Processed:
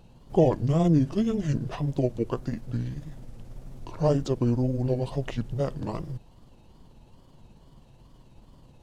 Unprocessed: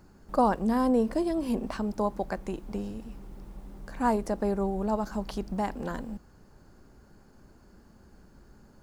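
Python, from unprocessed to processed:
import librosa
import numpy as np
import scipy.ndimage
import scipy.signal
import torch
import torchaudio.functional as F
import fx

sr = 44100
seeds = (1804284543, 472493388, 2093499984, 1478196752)

y = fx.pitch_heads(x, sr, semitones=-8.0)
y = fx.wow_flutter(y, sr, seeds[0], rate_hz=2.1, depth_cents=120.0)
y = y * librosa.db_to_amplitude(4.0)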